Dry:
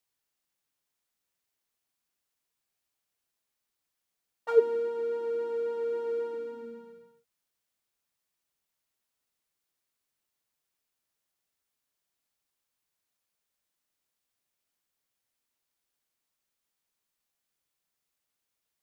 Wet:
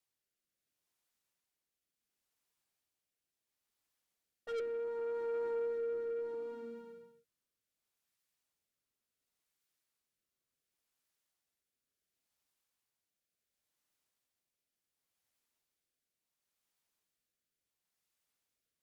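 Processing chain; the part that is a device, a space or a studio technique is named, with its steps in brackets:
overdriven rotary cabinet (tube saturation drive 32 dB, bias 0.25; rotating-speaker cabinet horn 0.7 Hz)

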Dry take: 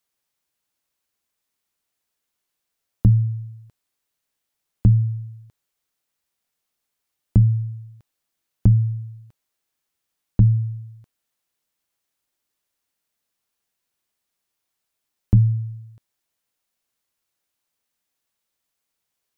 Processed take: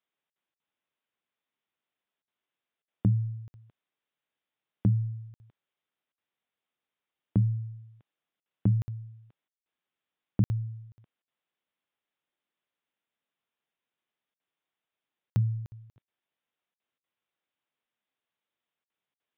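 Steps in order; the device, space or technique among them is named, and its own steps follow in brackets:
call with lost packets (high-pass filter 140 Hz 12 dB per octave; downsampling to 8,000 Hz; dropped packets of 60 ms random)
level −4.5 dB

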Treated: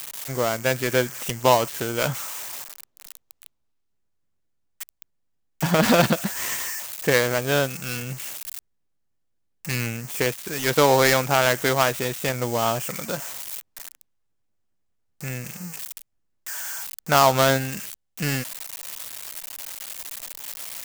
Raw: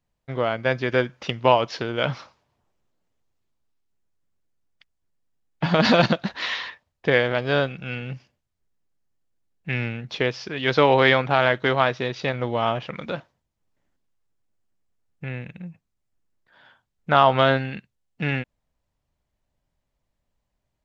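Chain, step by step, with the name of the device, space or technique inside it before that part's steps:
budget class-D amplifier (gap after every zero crossing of 0.14 ms; spike at every zero crossing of −17 dBFS)

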